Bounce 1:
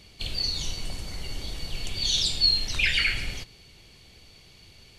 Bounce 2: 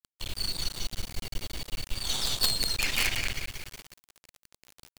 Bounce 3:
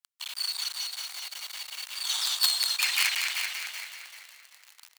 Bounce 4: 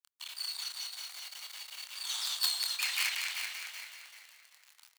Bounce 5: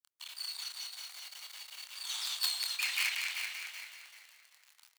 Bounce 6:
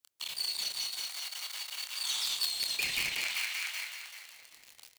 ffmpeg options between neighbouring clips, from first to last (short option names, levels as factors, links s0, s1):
-af "asoftclip=type=tanh:threshold=0.1,aecho=1:1:182|364|546|728|910:0.631|0.246|0.096|0.0374|0.0146,acrusher=bits=4:dc=4:mix=0:aa=0.000001"
-filter_complex "[0:a]highpass=f=920:w=0.5412,highpass=f=920:w=1.3066,asplit=5[s0][s1][s2][s3][s4];[s1]adelay=387,afreqshift=-65,volume=0.447[s5];[s2]adelay=774,afreqshift=-130,volume=0.148[s6];[s3]adelay=1161,afreqshift=-195,volume=0.0484[s7];[s4]adelay=1548,afreqshift=-260,volume=0.016[s8];[s0][s5][s6][s7][s8]amix=inputs=5:normalize=0,volume=1.26"
-filter_complex "[0:a]asplit=2[s0][s1];[s1]adelay=26,volume=0.376[s2];[s0][s2]amix=inputs=2:normalize=0,volume=0.447"
-af "adynamicequalizer=threshold=0.00562:dfrequency=2400:dqfactor=2.4:tfrequency=2400:tqfactor=2.4:attack=5:release=100:ratio=0.375:range=2:mode=boostabove:tftype=bell,volume=0.75"
-filter_complex "[0:a]acrossover=split=1400|4100[s0][s1][s2];[s0]acrusher=samples=15:mix=1:aa=0.000001:lfo=1:lforange=15:lforate=0.46[s3];[s3][s1][s2]amix=inputs=3:normalize=0,acompressor=threshold=0.0126:ratio=4,volume=2.51"